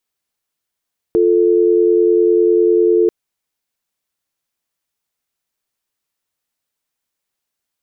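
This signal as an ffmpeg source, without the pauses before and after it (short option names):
-f lavfi -i "aevalsrc='0.251*(sin(2*PI*350*t)+sin(2*PI*440*t))':d=1.94:s=44100"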